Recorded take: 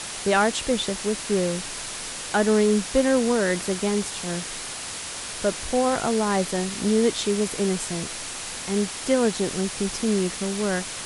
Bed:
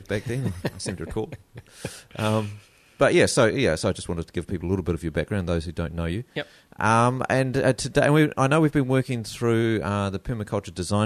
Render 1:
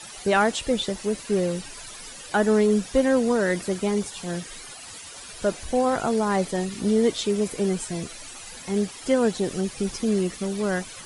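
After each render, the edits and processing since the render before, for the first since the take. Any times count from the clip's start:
broadband denoise 13 dB, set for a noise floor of −34 dBFS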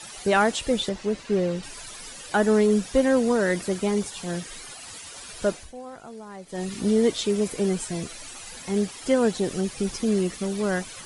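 0:00.89–0:01.63: high-frequency loss of the air 88 metres
0:05.48–0:06.71: duck −17.5 dB, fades 0.25 s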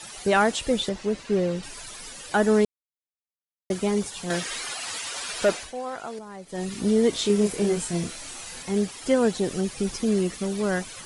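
0:02.65–0:03.70: silence
0:04.30–0:06.19: mid-hump overdrive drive 16 dB, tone 5,200 Hz, clips at −11 dBFS
0:07.10–0:08.63: double-tracking delay 29 ms −3 dB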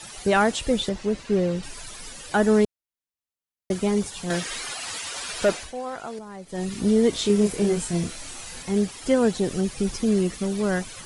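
low-shelf EQ 150 Hz +6.5 dB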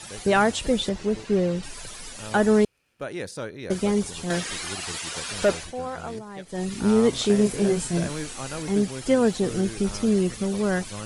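mix in bed −15 dB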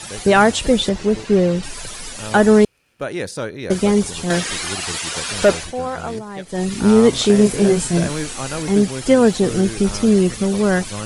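level +7.5 dB
brickwall limiter −2 dBFS, peak gain reduction 1.5 dB

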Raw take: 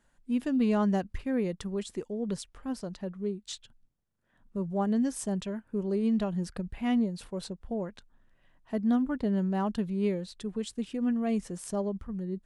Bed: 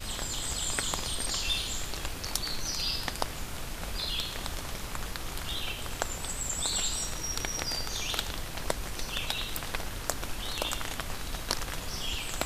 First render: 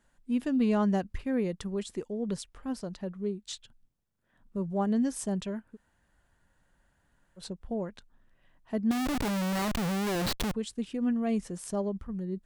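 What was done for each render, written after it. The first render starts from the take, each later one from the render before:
0:05.72–0:07.41: fill with room tone, crossfade 0.10 s
0:08.91–0:10.54: comparator with hysteresis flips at −46.5 dBFS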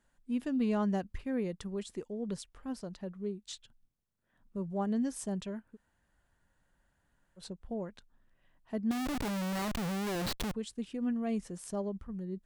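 level −4.5 dB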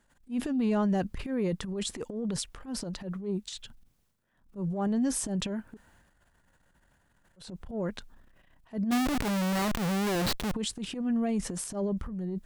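transient designer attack −12 dB, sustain +9 dB
in parallel at 0 dB: brickwall limiter −29.5 dBFS, peak gain reduction 10.5 dB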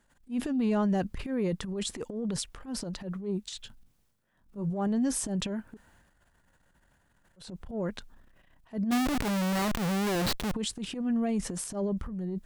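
0:03.61–0:04.70: double-tracking delay 19 ms −8.5 dB

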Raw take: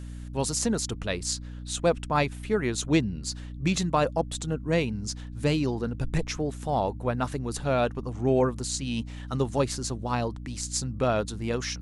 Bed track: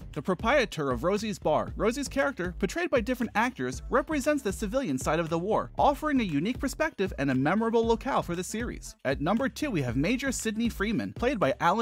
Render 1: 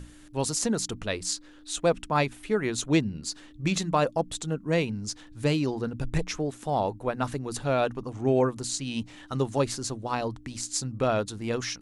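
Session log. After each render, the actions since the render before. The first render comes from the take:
mains-hum notches 60/120/180/240 Hz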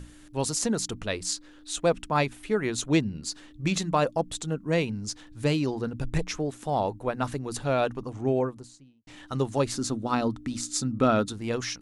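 0:08.02–0:09.07: fade out and dull
0:09.75–0:11.33: hollow resonant body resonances 240/1,300/3,600 Hz, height 9 dB, ringing for 25 ms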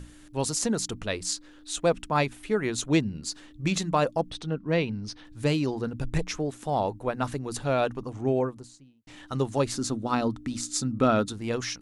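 0:04.31–0:05.25: Savitzky-Golay smoothing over 15 samples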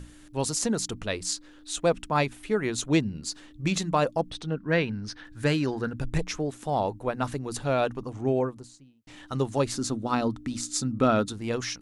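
0:04.57–0:06.01: parametric band 1,600 Hz +11 dB 0.51 octaves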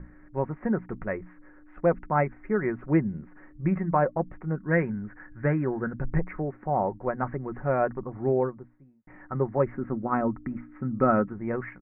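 Butterworth low-pass 2,100 Hz 72 dB per octave
comb filter 5.4 ms, depth 38%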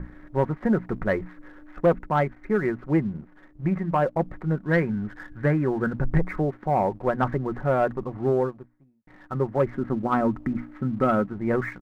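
speech leveller within 4 dB 0.5 s
leveller curve on the samples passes 1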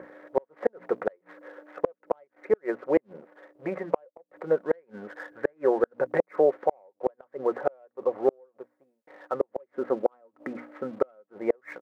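high-pass with resonance 510 Hz, resonance Q 4.9
gate with flip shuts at −10 dBFS, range −40 dB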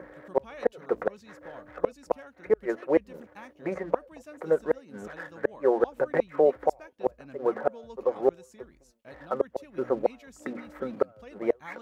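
mix in bed track −21 dB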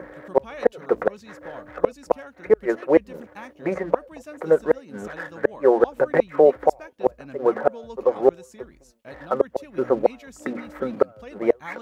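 level +6.5 dB
brickwall limiter −2 dBFS, peak gain reduction 2 dB

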